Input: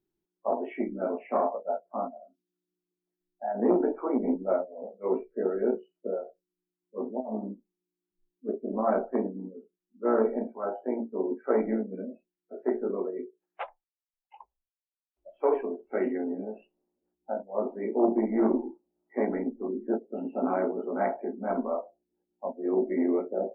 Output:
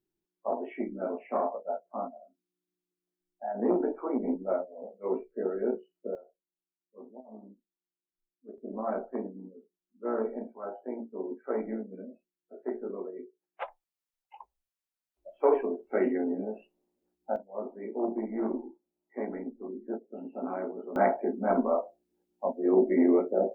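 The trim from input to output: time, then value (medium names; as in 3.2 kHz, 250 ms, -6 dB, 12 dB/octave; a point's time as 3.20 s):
-3 dB
from 6.15 s -15 dB
from 8.58 s -6.5 dB
from 13.62 s +1.5 dB
from 17.36 s -7 dB
from 20.96 s +3.5 dB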